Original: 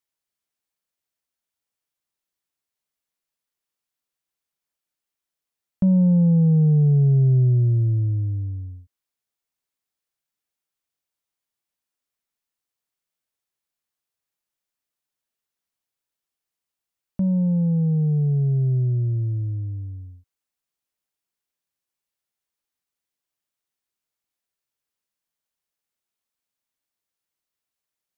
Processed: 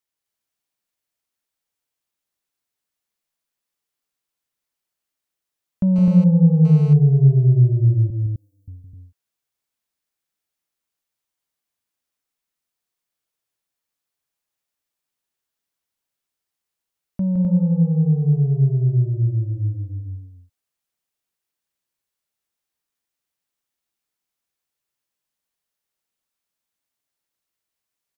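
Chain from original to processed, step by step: 8.10–8.68 s: differentiator; loudspeakers at several distances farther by 56 m -6 dB, 88 m -2 dB; 5.96–6.93 s: mobile phone buzz -42 dBFS

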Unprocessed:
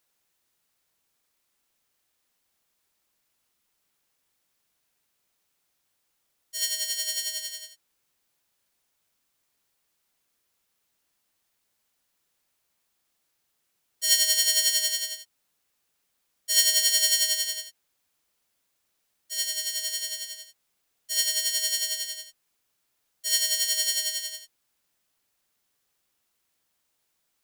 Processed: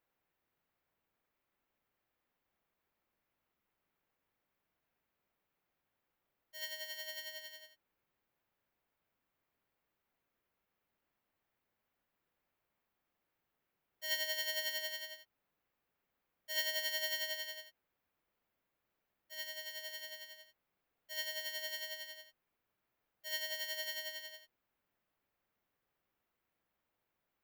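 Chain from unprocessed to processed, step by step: FFT filter 650 Hz 0 dB, 2.2 kHz -4 dB, 9.1 kHz -27 dB, 14 kHz -10 dB; trim -2 dB

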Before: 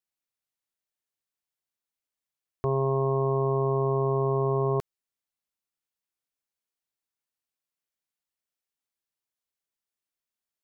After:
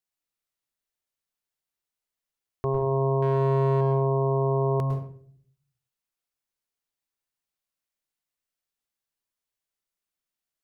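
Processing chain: 3.22–3.81 s: waveshaping leveller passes 1; on a send: reverberation RT60 0.55 s, pre-delay 100 ms, DRR 4 dB

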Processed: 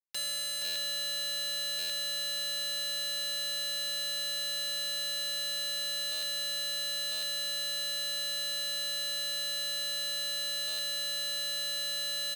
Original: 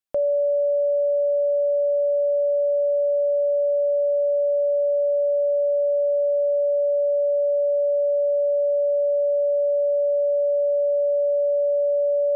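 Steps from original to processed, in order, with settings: median filter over 41 samples; high-pass 420 Hz 12 dB/octave; comb 5.1 ms, depth 94%; peak limiter -16 dBFS, peak gain reduction 2 dB; integer overflow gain 26.5 dB; Chebyshev shaper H 7 -14 dB, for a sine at -26.5 dBFS; gain riding; delay 473 ms -6 dB; buffer glitch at 0.64/1.78/6.11/7.11/10.67 s, samples 512, times 9; trim -5.5 dB

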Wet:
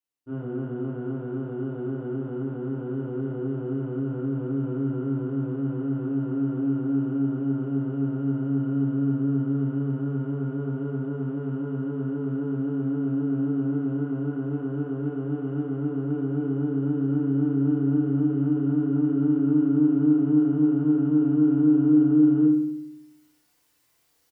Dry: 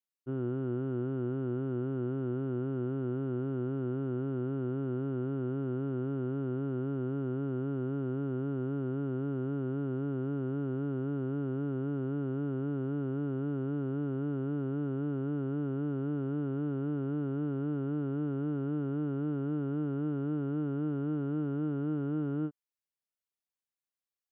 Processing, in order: reverse; upward compressor, threshold -50 dBFS; reverse; doubling 30 ms -7 dB; FDN reverb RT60 0.78 s, low-frequency decay 1.35×, high-frequency decay 0.6×, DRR -5 dB; trim -4 dB

